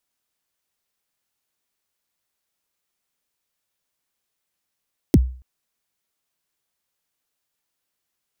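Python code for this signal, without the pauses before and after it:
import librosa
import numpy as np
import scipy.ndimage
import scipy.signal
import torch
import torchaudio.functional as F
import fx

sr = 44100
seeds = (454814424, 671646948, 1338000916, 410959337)

y = fx.drum_kick(sr, seeds[0], length_s=0.28, level_db=-6.0, start_hz=380.0, end_hz=63.0, sweep_ms=38.0, decay_s=0.42, click=True)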